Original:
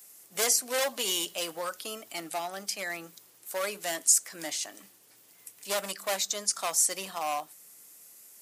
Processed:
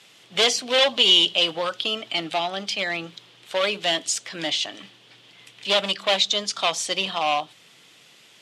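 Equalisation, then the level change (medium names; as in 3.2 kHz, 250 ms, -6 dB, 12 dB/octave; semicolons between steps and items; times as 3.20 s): dynamic bell 1.7 kHz, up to -5 dB, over -46 dBFS, Q 1.1; resonant low-pass 3.3 kHz, resonance Q 3.8; peaking EQ 120 Hz +7.5 dB 0.93 oct; +9.0 dB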